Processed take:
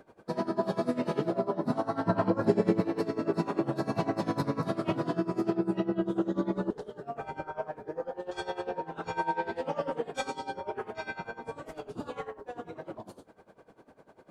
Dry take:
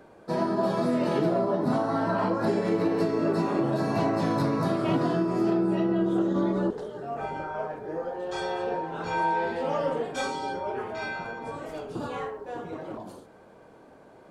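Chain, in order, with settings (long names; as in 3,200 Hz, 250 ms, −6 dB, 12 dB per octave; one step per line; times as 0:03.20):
0:02.06–0:02.81: low-shelf EQ 440 Hz +8 dB
tremolo with a sine in dB 10 Hz, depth 18 dB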